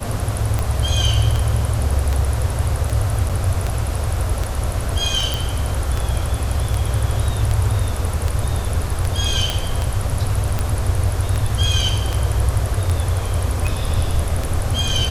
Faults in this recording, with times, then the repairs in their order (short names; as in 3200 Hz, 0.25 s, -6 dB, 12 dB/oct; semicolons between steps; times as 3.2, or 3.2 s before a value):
tick 78 rpm -8 dBFS
3.29–3.3 gap 6.3 ms
5.34 pop
9.5 pop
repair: de-click; interpolate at 3.29, 6.3 ms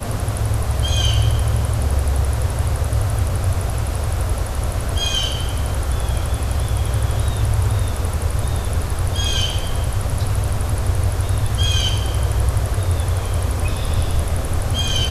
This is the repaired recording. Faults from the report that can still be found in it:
none